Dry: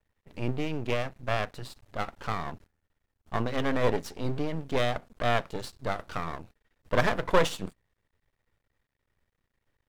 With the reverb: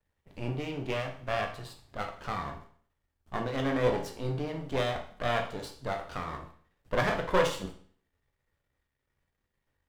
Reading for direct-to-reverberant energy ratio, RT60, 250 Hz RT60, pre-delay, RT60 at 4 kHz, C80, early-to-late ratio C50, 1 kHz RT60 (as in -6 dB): 2.5 dB, 0.50 s, 0.55 s, 11 ms, 0.50 s, 12.5 dB, 8.5 dB, 0.50 s